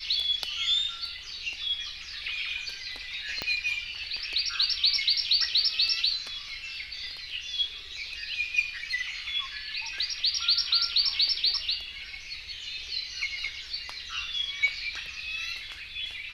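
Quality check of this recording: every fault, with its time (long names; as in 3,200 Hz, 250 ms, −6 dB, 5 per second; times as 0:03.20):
0:03.42: click −15 dBFS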